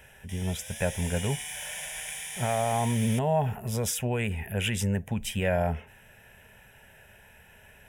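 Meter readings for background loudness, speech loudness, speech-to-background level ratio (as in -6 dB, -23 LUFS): -36.5 LUFS, -29.5 LUFS, 7.0 dB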